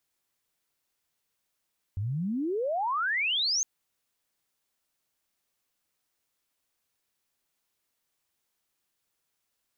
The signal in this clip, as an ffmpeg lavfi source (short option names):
-f lavfi -i "aevalsrc='pow(10,(-28+4*t/1.66)/20)*sin(2*PI*92*1.66/log(6600/92)*(exp(log(6600/92)*t/1.66)-1))':d=1.66:s=44100"